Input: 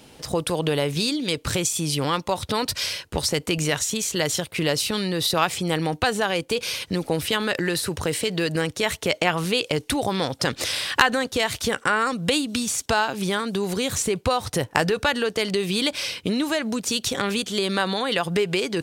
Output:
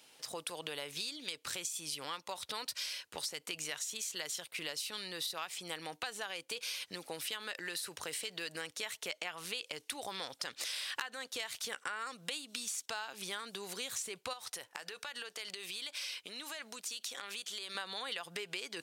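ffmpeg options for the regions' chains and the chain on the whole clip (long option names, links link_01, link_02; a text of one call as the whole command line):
ffmpeg -i in.wav -filter_complex "[0:a]asettb=1/sr,asplit=3[link_01][link_02][link_03];[link_01]atrim=end=14.334[link_04];[link_02]atrim=start=14.33:end=17.75,asetpts=PTS-STARTPTS,afade=type=in:duration=0.004:curve=qsin,afade=type=out:start_time=3.416:duration=0.004:curve=qsin,lowshelf=frequency=320:gain=-9.5,acompressor=threshold=-26dB:ratio=10:attack=3.2:release=140:knee=1:detection=peak[link_05];[link_03]atrim=start=17.746[link_06];[link_04][link_05]acrossfade=duration=0.004:curve1=hsin:curve2=qsin[link_07];[link_07][link_06]acrossfade=duration=0.004:curve1=qsin:curve2=hsin,lowpass=frequency=1600:poles=1,aderivative,acompressor=threshold=-41dB:ratio=6,volume=5dB" out.wav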